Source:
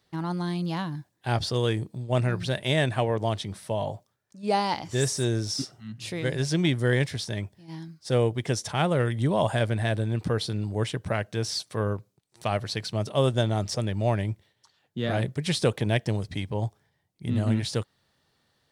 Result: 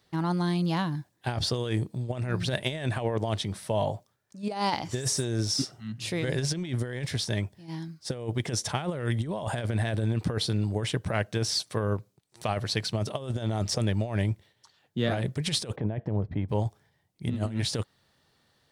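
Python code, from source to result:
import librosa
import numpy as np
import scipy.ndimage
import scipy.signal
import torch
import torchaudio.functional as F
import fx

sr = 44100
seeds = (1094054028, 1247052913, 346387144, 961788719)

y = fx.lowpass(x, sr, hz=1100.0, slope=12, at=(15.75, 16.48), fade=0.02)
y = fx.over_compress(y, sr, threshold_db=-27.0, ratio=-0.5)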